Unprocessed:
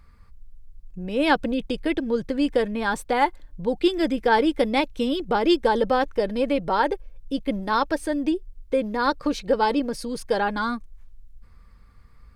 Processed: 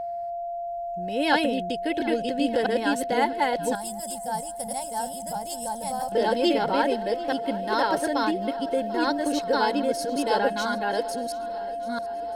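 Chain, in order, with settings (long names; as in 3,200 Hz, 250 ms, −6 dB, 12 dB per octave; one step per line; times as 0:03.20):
delay that plays each chunk backwards 666 ms, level −0.5 dB
high-shelf EQ 3,700 Hz +9 dB
notch comb filter 1,200 Hz
feedback echo with a long and a short gap by turns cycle 1,235 ms, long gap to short 1.5 to 1, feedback 51%, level −19 dB
steady tone 690 Hz −25 dBFS
0:03.75–0:06.12: drawn EQ curve 190 Hz 0 dB, 340 Hz −29 dB, 750 Hz −2 dB, 1,300 Hz −15 dB, 2,400 Hz −20 dB, 3,900 Hz −15 dB, 8,600 Hz +15 dB, 12,000 Hz +11 dB
level −4 dB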